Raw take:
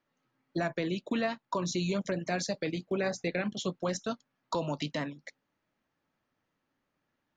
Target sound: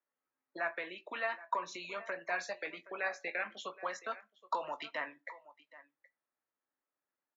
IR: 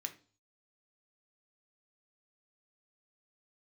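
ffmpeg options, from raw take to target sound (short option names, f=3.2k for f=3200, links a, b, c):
-filter_complex "[0:a]highshelf=f=2.2k:g=8.5,acrossover=split=740[a][b];[a]acompressor=threshold=-46dB:ratio=10[c];[c][b]amix=inputs=2:normalize=0,acrossover=split=310 2100:gain=0.112 1 0.0708[d][e][f];[d][e][f]amix=inputs=3:normalize=0,aecho=1:1:772:0.141,asplit=2[g][h];[1:a]atrim=start_sample=2205,highshelf=f=2.7k:g=8,adelay=20[i];[h][i]afir=irnorm=-1:irlink=0,volume=-9dB[j];[g][j]amix=inputs=2:normalize=0,afftdn=nr=14:nf=-57,volume=1dB"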